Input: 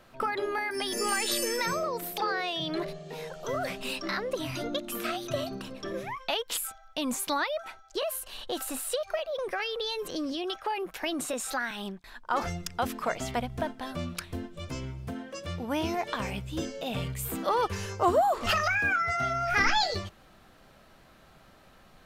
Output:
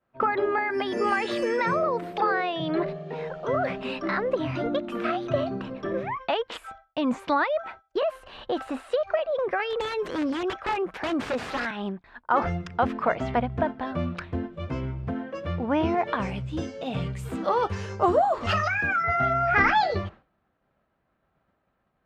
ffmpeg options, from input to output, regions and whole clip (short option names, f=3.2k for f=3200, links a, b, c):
-filter_complex "[0:a]asettb=1/sr,asplit=3[a][b][c];[a]atrim=end=9.704[d];[b]atrim=start=9.7:end=11.71,asetpts=PTS-STARTPTS,afade=t=in:d=0.004:c=qsin,afade=t=out:st=2.006:d=0.004:c=qsin,aemphasis=mode=production:type=50kf,aeval=exprs='(mod(16.8*val(0)+1,2)-1)/16.8':c=same[e];[c]atrim=start=11.706[f];[d][e]acrossfade=d=0.004:c1=hsin:c2=qsin[g];[g][f]acrossfade=d=0.004:c1=qsin:c2=hsin,asettb=1/sr,asplit=3[h][i][j];[h]atrim=end=16.204[k];[i]atrim=start=16.2:end=19.04,asetpts=PTS-STARTPTS,afade=t=in:d=0.004:c=qsin,afade=t=out:st=2.836:d=0.004:c=qsin,bass=f=250:g=3,treble=f=4k:g=15,flanger=delay=5:depth=5.5:regen=56:speed=1.1:shape=sinusoidal[l];[j]atrim=start=19.036[m];[k][l]acrossfade=d=0.004:c1=hsin:c2=qsin[n];[n][m]acrossfade=d=0.004:c1=qsin:c2=hsin,highpass=42,agate=range=-33dB:threshold=-43dB:ratio=3:detection=peak,lowpass=1.9k,volume=6.5dB"